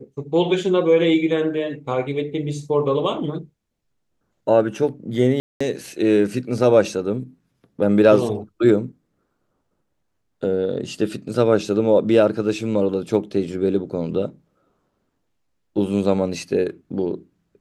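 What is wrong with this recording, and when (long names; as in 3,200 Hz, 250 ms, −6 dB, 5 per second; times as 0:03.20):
0:05.40–0:05.61: drop-out 205 ms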